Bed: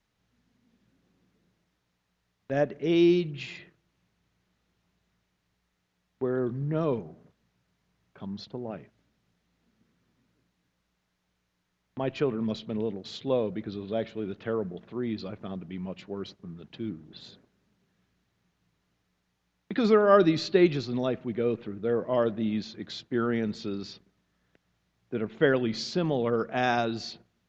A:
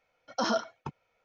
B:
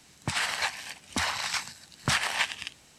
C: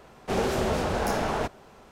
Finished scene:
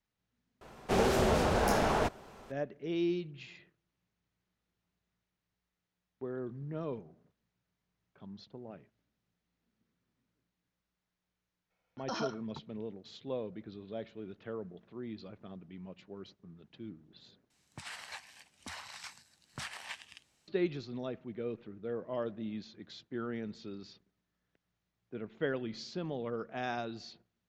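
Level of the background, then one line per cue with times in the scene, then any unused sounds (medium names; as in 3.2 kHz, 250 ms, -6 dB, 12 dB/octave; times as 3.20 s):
bed -11 dB
0.61 s: add C -1.5 dB
11.70 s: add A -9 dB
17.50 s: replace with B -16.5 dB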